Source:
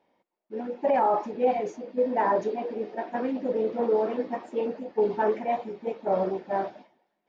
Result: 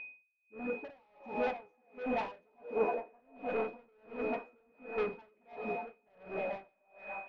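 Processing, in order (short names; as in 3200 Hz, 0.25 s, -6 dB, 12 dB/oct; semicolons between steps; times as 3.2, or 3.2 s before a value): soft clip -31 dBFS, distortion -6 dB; 2.58–3.2 graphic EQ 500/1000/4000 Hz +8/+5/-11 dB; delay with a stepping band-pass 0.299 s, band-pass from 630 Hz, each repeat 0.7 oct, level -4 dB; whine 2500 Hz -41 dBFS; air absorption 190 m; notch 370 Hz, Q 12; digital reverb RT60 3.1 s, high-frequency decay 1×, pre-delay 0.115 s, DRR 12 dB; dB-linear tremolo 1.4 Hz, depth 38 dB; gain +1.5 dB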